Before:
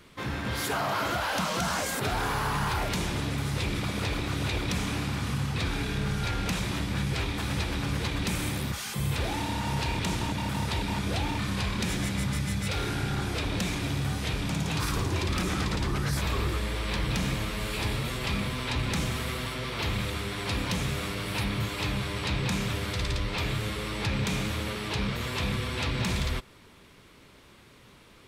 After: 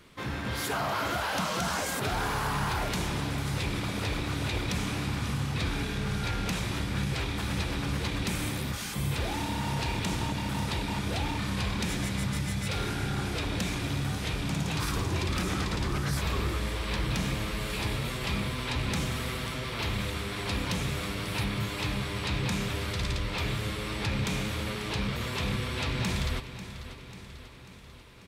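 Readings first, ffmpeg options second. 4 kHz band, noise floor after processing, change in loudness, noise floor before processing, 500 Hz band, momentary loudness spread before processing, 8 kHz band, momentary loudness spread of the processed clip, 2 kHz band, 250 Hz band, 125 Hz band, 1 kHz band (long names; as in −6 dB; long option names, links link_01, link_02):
−1.0 dB, −44 dBFS, −1.0 dB, −54 dBFS, −1.0 dB, 3 LU, −1.0 dB, 3 LU, −1.0 dB, −1.0 dB, −1.0 dB, −1.0 dB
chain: -af "aecho=1:1:542|1084|1626|2168|2710|3252:0.224|0.132|0.0779|0.046|0.0271|0.016,volume=-1.5dB"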